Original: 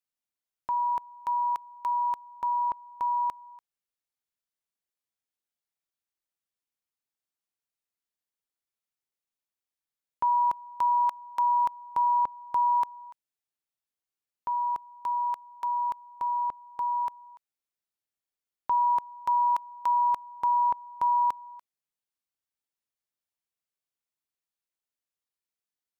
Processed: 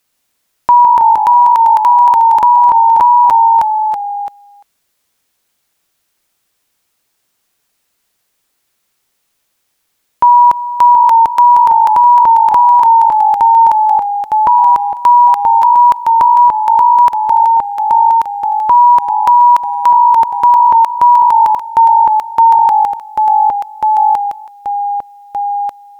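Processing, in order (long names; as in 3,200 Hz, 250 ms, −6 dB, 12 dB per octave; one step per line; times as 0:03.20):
delay with pitch and tempo change per echo 119 ms, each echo −1 semitone, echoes 3, each echo −6 dB
boost into a limiter +26.5 dB
level −1 dB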